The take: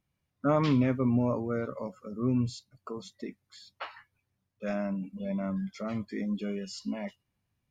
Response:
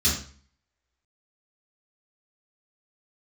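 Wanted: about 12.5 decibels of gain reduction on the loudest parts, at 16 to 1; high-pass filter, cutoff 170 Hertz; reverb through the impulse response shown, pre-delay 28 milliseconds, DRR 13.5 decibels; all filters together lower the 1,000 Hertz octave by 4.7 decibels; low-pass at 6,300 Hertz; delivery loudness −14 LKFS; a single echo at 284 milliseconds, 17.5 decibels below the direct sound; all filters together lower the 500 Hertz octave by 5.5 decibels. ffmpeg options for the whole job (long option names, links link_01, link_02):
-filter_complex "[0:a]highpass=170,lowpass=6300,equalizer=frequency=500:width_type=o:gain=-5.5,equalizer=frequency=1000:width_type=o:gain=-4.5,acompressor=threshold=-37dB:ratio=16,aecho=1:1:284:0.133,asplit=2[link_01][link_02];[1:a]atrim=start_sample=2205,adelay=28[link_03];[link_02][link_03]afir=irnorm=-1:irlink=0,volume=-25.5dB[link_04];[link_01][link_04]amix=inputs=2:normalize=0,volume=27.5dB"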